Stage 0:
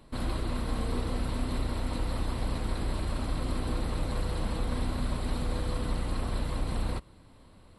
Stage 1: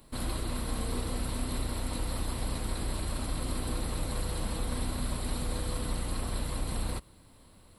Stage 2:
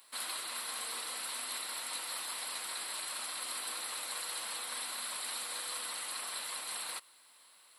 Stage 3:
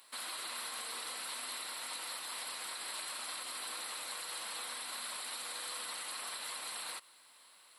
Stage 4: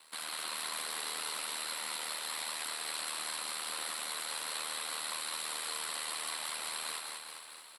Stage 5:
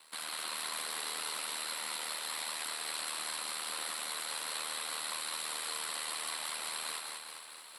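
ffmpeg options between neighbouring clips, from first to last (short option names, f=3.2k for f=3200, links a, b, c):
-af "aemphasis=mode=production:type=50fm,volume=-2dB"
-af "highpass=1.3k,volume=3.5dB"
-af "highshelf=f=9.2k:g=-4.5,alimiter=level_in=9.5dB:limit=-24dB:level=0:latency=1:release=80,volume=-9.5dB,volume=1.5dB"
-filter_complex "[0:a]aeval=exprs='val(0)*sin(2*PI*39*n/s)':c=same,asplit=2[a][b];[b]aecho=0:1:190|399|628.9|881.8|1160:0.631|0.398|0.251|0.158|0.1[c];[a][c]amix=inputs=2:normalize=0,volume=4.5dB"
-af "highpass=64,areverse,acompressor=mode=upward:threshold=-47dB:ratio=2.5,areverse"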